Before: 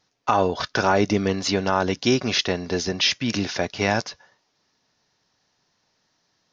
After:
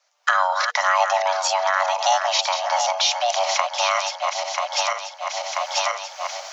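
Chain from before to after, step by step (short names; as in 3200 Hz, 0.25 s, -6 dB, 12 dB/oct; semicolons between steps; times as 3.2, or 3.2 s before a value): regenerating reverse delay 0.493 s, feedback 46%, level -8 dB; recorder AGC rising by 37 dB/s; frequency shift +470 Hz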